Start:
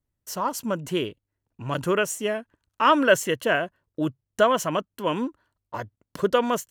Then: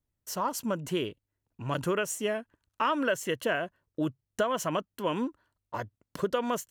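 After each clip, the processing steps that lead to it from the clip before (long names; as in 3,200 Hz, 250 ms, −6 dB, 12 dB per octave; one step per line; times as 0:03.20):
downward compressor 5 to 1, threshold −22 dBFS, peak gain reduction 10 dB
level −2.5 dB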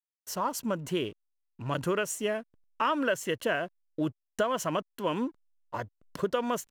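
slack as between gear wheels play −51 dBFS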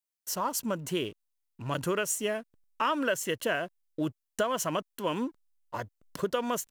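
high-shelf EQ 4,700 Hz +7.5 dB
level −1 dB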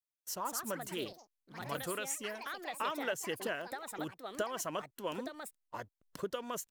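harmonic and percussive parts rebalanced harmonic −6 dB
delay with pitch and tempo change per echo 236 ms, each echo +4 semitones, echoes 3, each echo −6 dB
level −6.5 dB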